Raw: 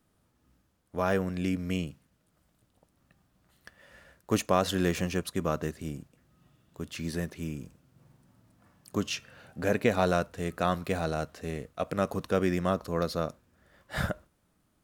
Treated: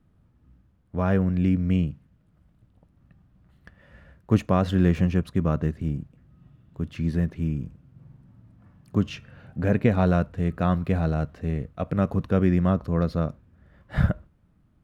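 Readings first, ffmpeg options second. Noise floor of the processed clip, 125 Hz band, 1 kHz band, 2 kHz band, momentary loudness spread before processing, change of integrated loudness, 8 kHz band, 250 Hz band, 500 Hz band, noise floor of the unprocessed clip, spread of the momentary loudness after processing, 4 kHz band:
-63 dBFS, +11.0 dB, 0.0 dB, -1.0 dB, 13 LU, +6.0 dB, under -10 dB, +8.0 dB, +1.0 dB, -72 dBFS, 11 LU, -5.5 dB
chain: -af "bass=f=250:g=13,treble=f=4000:g=-14"

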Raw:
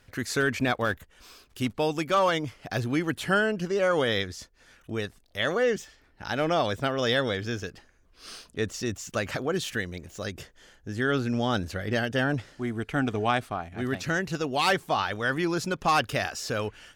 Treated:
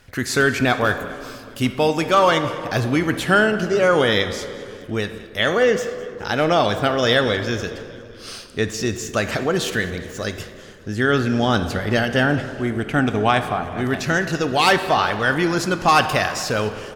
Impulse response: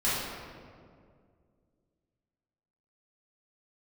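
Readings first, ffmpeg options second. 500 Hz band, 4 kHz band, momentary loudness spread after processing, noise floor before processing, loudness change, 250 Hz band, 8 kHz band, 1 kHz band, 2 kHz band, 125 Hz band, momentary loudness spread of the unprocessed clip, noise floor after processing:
+8.0 dB, +8.0 dB, 13 LU, -61 dBFS, +8.0 dB, +7.5 dB, +8.0 dB, +8.5 dB, +8.5 dB, +7.5 dB, 12 LU, -40 dBFS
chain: -filter_complex "[0:a]asplit=6[s0][s1][s2][s3][s4][s5];[s1]adelay=207,afreqshift=-40,volume=0.1[s6];[s2]adelay=414,afreqshift=-80,volume=0.0617[s7];[s3]adelay=621,afreqshift=-120,volume=0.0385[s8];[s4]adelay=828,afreqshift=-160,volume=0.0237[s9];[s5]adelay=1035,afreqshift=-200,volume=0.0148[s10];[s0][s6][s7][s8][s9][s10]amix=inputs=6:normalize=0,asplit=2[s11][s12];[1:a]atrim=start_sample=2205,asetrate=38808,aresample=44100,lowshelf=f=210:g=-8.5[s13];[s12][s13]afir=irnorm=-1:irlink=0,volume=0.106[s14];[s11][s14]amix=inputs=2:normalize=0,volume=2.24"

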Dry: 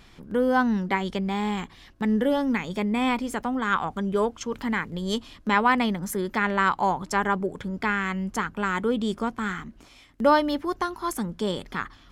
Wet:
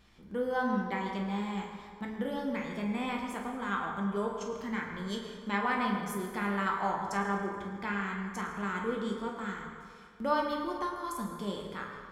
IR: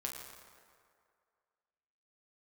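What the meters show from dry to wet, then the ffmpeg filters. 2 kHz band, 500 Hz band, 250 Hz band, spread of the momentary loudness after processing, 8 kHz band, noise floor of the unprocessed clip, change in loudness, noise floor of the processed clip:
-8.5 dB, -8.5 dB, -8.5 dB, 8 LU, -9.5 dB, -52 dBFS, -8.5 dB, -50 dBFS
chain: -filter_complex "[1:a]atrim=start_sample=2205[s0];[0:a][s0]afir=irnorm=-1:irlink=0,volume=0.376"

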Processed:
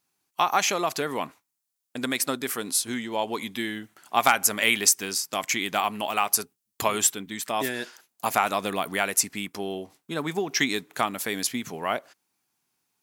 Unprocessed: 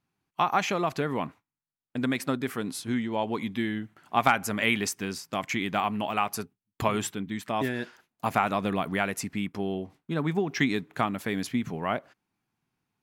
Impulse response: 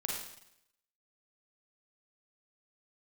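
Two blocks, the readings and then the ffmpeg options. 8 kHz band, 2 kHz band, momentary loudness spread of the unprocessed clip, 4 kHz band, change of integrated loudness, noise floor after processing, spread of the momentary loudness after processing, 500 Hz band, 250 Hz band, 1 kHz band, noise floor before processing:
+14.0 dB, +3.0 dB, 9 LU, +7.5 dB, +3.5 dB, -81 dBFS, 13 LU, +1.0 dB, -3.5 dB, +2.0 dB, under -85 dBFS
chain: -af "bass=f=250:g=-11,treble=f=4000:g=13,volume=1.26"

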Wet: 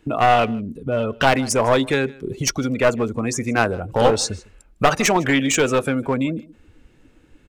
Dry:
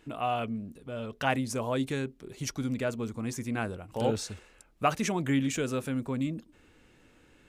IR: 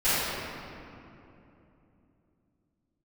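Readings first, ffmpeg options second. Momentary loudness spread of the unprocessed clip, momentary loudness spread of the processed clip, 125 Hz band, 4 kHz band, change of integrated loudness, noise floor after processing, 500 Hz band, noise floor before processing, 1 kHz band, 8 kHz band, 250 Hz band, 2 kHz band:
11 LU, 8 LU, +8.5 dB, +14.0 dB, +12.0 dB, -55 dBFS, +14.0 dB, -62 dBFS, +13.5 dB, +14.5 dB, +9.0 dB, +14.5 dB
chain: -filter_complex "[0:a]afftdn=nr=16:nf=-44,lowshelf=f=410:g=6,acrossover=split=440|2600[s0][s1][s2];[s0]acompressor=threshold=0.00794:ratio=6[s3];[s3][s1][s2]amix=inputs=3:normalize=0,aeval=exprs='clip(val(0),-1,0.0282)':c=same,asplit=2[s4][s5];[s5]aecho=0:1:155:0.0668[s6];[s4][s6]amix=inputs=2:normalize=0,alimiter=level_in=7.5:limit=0.891:release=50:level=0:latency=1,volume=0.891"

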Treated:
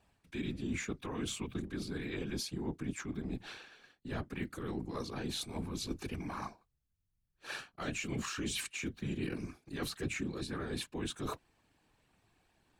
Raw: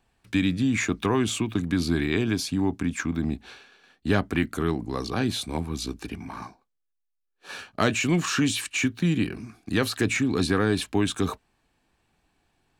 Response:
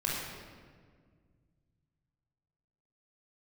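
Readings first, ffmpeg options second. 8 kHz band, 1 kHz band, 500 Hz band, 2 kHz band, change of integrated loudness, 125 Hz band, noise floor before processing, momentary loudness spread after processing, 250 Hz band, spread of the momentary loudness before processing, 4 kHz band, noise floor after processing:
-10.5 dB, -13.0 dB, -13.5 dB, -13.5 dB, -14.0 dB, -13.5 dB, -78 dBFS, 7 LU, -14.5 dB, 13 LU, -11.0 dB, -80 dBFS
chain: -af "areverse,acompressor=threshold=0.0224:ratio=8,areverse,afftfilt=real='hypot(re,im)*cos(2*PI*random(0))':imag='hypot(re,im)*sin(2*PI*random(1))':win_size=512:overlap=0.75,volume=1.58"

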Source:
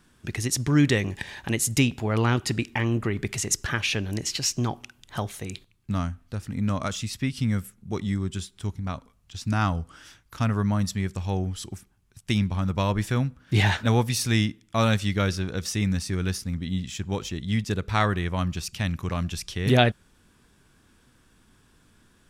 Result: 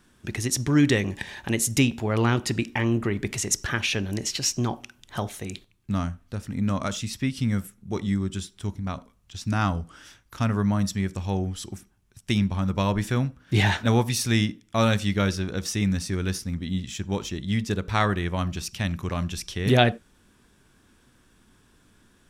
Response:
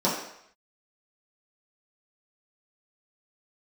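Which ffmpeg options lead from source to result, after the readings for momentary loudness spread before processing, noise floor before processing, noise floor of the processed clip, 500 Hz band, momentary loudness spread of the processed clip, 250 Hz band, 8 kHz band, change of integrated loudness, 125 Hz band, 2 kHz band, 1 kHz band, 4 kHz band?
12 LU, -62 dBFS, -61 dBFS, +1.0 dB, 12 LU, +1.5 dB, +0.5 dB, +0.5 dB, -0.5 dB, +0.5 dB, +0.5 dB, +0.5 dB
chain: -filter_complex "[0:a]asplit=2[s0][s1];[1:a]atrim=start_sample=2205,atrim=end_sample=4410[s2];[s1][s2]afir=irnorm=-1:irlink=0,volume=0.0376[s3];[s0][s3]amix=inputs=2:normalize=0"

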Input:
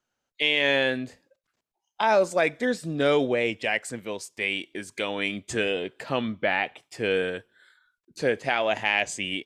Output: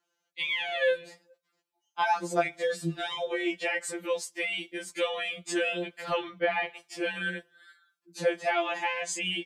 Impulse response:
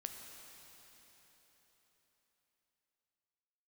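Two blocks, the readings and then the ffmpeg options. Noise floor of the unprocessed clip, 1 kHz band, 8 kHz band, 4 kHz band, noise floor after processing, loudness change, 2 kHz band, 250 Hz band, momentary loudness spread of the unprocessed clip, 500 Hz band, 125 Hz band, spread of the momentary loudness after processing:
-83 dBFS, -2.0 dB, +0.5 dB, -4.5 dB, -81 dBFS, -4.5 dB, -4.5 dB, -6.0 dB, 10 LU, -5.0 dB, -5.5 dB, 7 LU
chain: -filter_complex "[0:a]highpass=200,acrossover=split=1300[s0][s1];[s1]alimiter=limit=0.106:level=0:latency=1:release=46[s2];[s0][s2]amix=inputs=2:normalize=0,acompressor=threshold=0.0501:ratio=2.5,afftfilt=real='re*2.83*eq(mod(b,8),0)':imag='im*2.83*eq(mod(b,8),0)':win_size=2048:overlap=0.75,volume=1.5"

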